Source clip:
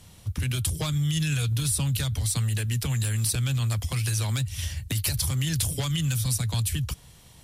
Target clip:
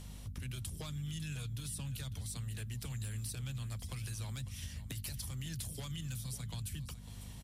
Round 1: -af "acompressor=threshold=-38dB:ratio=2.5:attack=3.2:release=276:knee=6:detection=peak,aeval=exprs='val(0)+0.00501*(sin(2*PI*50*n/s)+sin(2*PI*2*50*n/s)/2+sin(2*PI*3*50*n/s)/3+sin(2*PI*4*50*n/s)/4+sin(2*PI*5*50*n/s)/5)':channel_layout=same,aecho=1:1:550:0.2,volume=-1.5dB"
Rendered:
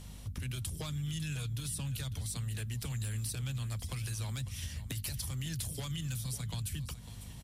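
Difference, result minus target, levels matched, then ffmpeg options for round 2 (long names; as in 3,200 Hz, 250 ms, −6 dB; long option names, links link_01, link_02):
downward compressor: peak gain reduction −4 dB
-af "acompressor=threshold=-45dB:ratio=2.5:attack=3.2:release=276:knee=6:detection=peak,aeval=exprs='val(0)+0.00501*(sin(2*PI*50*n/s)+sin(2*PI*2*50*n/s)/2+sin(2*PI*3*50*n/s)/3+sin(2*PI*4*50*n/s)/4+sin(2*PI*5*50*n/s)/5)':channel_layout=same,aecho=1:1:550:0.2,volume=-1.5dB"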